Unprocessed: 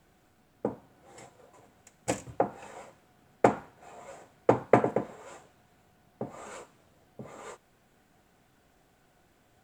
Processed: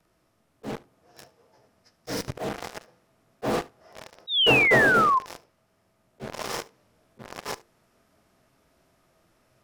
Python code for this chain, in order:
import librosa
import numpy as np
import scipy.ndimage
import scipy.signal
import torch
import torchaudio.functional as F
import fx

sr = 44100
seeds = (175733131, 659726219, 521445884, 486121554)

p1 = fx.partial_stretch(x, sr, pct=90)
p2 = fx.hum_notches(p1, sr, base_hz=50, count=10)
p3 = fx.fuzz(p2, sr, gain_db=52.0, gate_db=-44.0)
p4 = p2 + (p3 * 10.0 ** (-10.0 / 20.0))
p5 = fx.rider(p4, sr, range_db=3, speed_s=2.0)
p6 = fx.spec_paint(p5, sr, seeds[0], shape='fall', start_s=4.27, length_s=0.92, low_hz=1000.0, high_hz=3900.0, level_db=-20.0)
p7 = fx.auto_swell(p6, sr, attack_ms=139.0)
y = p7 + fx.echo_single(p7, sr, ms=72, db=-22.0, dry=0)